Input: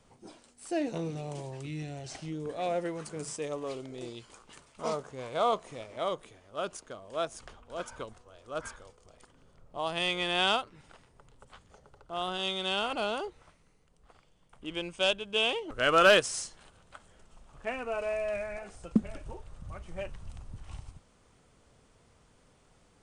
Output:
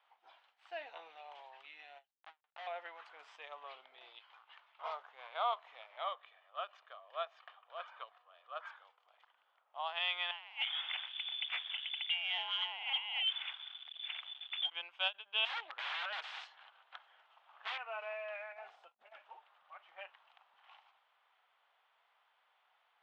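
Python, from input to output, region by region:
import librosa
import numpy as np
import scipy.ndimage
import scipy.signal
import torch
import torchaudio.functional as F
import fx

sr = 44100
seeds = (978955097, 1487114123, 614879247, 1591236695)

y = fx.chain(x, sr, fx.cheby1_lowpass(hz=1200.0, order=3),
    fx.hum_notches(base_hz=60, count=6),
    fx.schmitt(flips_db=-35.5), at=(2.11, 2.67))
y = fx.chain(y, sr, fx.lowpass(hz=5500.0, slope=12),
    fx.doubler(ms=19.0, db=-13.5), at=(3.64, 4.91))
y = fx.chain(y, sr, fx.lowpass(hz=5300.0, slope=12),
    fx.comb(ms=1.7, depth=0.44), at=(6.04, 8.67))
y = fx.chain(y, sr, fx.freq_invert(carrier_hz=3500),
    fx.over_compress(threshold_db=-40.0, ratio=-0.5),
    fx.leveller(passes=3), at=(10.31, 14.7))
y = fx.chain(y, sr, fx.over_compress(threshold_db=-28.0, ratio=-1.0),
    fx.overflow_wrap(gain_db=27.5),
    fx.doppler_dist(depth_ms=0.32), at=(15.45, 17.78))
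y = fx.chain(y, sr, fx.peak_eq(hz=1900.0, db=-9.0, octaves=2.4),
    fx.over_compress(threshold_db=-45.0, ratio=-1.0), at=(18.52, 19.13))
y = scipy.signal.sosfilt(scipy.signal.cheby1(3, 1.0, [770.0, 3400.0], 'bandpass', fs=sr, output='sos'), y)
y = fx.end_taper(y, sr, db_per_s=430.0)
y = F.gain(torch.from_numpy(y), -3.5).numpy()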